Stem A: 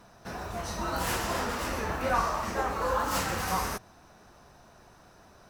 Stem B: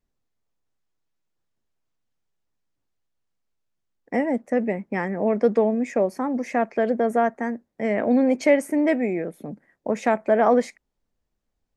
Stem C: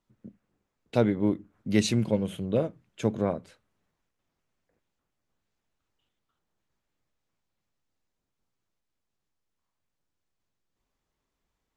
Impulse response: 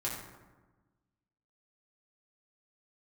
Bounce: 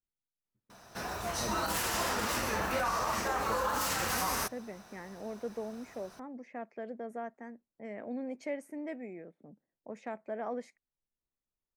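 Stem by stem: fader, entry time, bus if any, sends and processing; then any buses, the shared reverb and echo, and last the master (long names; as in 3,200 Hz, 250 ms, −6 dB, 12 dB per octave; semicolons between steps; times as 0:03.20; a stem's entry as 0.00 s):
+0.5 dB, 0.70 s, no send, spectral tilt +1.5 dB per octave
−19.5 dB, 0.00 s, no send, low-pass that shuts in the quiet parts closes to 540 Hz, open at −19.5 dBFS
−18.0 dB, 0.45 s, no send, no processing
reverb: not used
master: brickwall limiter −22.5 dBFS, peak gain reduction 8 dB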